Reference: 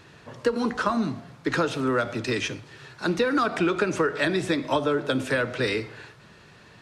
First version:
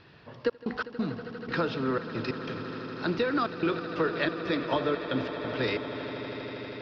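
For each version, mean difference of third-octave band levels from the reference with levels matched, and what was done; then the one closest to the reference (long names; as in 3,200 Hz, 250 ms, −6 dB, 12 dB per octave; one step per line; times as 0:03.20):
7.5 dB: Chebyshev low-pass filter 5,100 Hz, order 5
gate pattern "xxx.x.xx." 91 BPM −60 dB
echo that builds up and dies away 80 ms, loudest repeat 8, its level −16 dB
level −4 dB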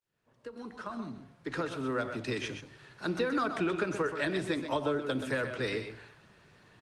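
3.5 dB: fade in at the beginning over 2.20 s
on a send: single-tap delay 127 ms −8.5 dB
on the sum: level −7.5 dB
Opus 32 kbit/s 48,000 Hz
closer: second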